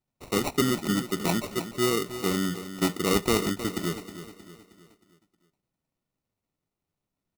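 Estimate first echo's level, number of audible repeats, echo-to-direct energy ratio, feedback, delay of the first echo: -12.0 dB, 4, -11.0 dB, 45%, 314 ms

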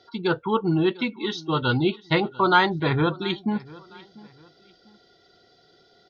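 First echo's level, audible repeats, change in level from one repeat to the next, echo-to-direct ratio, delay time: -21.5 dB, 2, -9.5 dB, -21.0 dB, 696 ms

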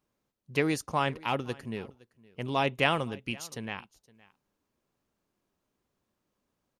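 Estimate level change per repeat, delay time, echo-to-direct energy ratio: no regular repeats, 515 ms, -23.0 dB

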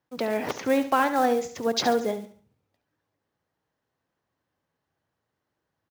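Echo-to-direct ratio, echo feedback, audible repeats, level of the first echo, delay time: -11.5 dB, 37%, 3, -12.0 dB, 70 ms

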